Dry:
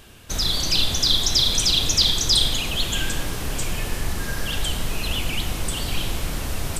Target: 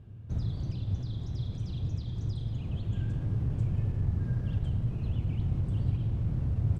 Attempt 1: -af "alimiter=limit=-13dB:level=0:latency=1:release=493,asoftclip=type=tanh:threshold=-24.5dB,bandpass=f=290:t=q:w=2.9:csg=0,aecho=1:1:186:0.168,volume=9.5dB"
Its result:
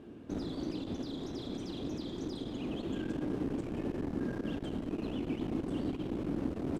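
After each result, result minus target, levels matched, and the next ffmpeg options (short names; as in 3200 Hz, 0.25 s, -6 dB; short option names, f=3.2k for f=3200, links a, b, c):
250 Hz band +10.0 dB; soft clip: distortion +12 dB
-af "alimiter=limit=-13dB:level=0:latency=1:release=493,asoftclip=type=tanh:threshold=-24.5dB,bandpass=f=110:t=q:w=2.9:csg=0,aecho=1:1:186:0.168,volume=9.5dB"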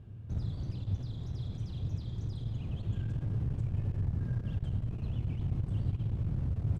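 soft clip: distortion +12 dB
-af "alimiter=limit=-13dB:level=0:latency=1:release=493,asoftclip=type=tanh:threshold=-15dB,bandpass=f=110:t=q:w=2.9:csg=0,aecho=1:1:186:0.168,volume=9.5dB"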